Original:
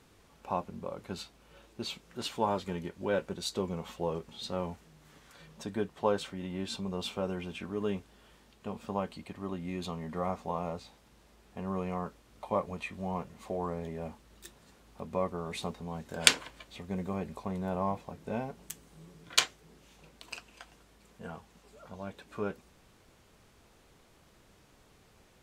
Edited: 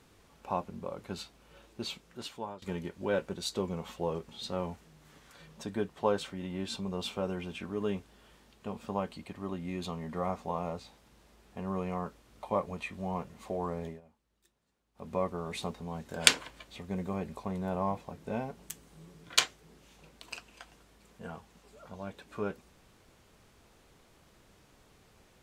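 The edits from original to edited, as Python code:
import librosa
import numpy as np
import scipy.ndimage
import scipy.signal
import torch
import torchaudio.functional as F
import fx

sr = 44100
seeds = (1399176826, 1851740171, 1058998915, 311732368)

y = fx.edit(x, sr, fx.fade_out_to(start_s=1.87, length_s=0.75, floor_db=-19.5),
    fx.fade_down_up(start_s=13.87, length_s=1.21, db=-20.5, fade_s=0.14), tone=tone)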